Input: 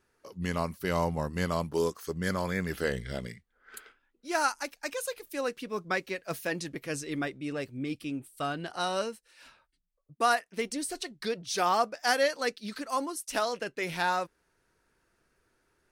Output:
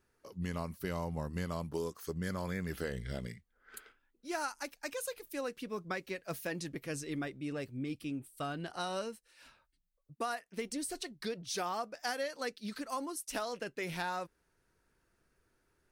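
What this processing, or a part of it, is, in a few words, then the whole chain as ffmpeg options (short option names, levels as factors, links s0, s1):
ASMR close-microphone chain: -af "lowshelf=f=240:g=5.5,acompressor=threshold=0.0398:ratio=6,highshelf=f=12000:g=5,volume=0.562"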